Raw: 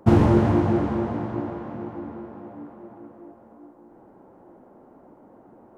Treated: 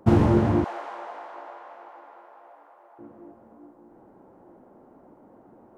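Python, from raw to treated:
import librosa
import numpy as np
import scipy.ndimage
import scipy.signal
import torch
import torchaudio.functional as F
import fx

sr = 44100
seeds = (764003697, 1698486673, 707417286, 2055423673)

y = fx.highpass(x, sr, hz=630.0, slope=24, at=(0.64, 2.99))
y = F.gain(torch.from_numpy(y), -2.0).numpy()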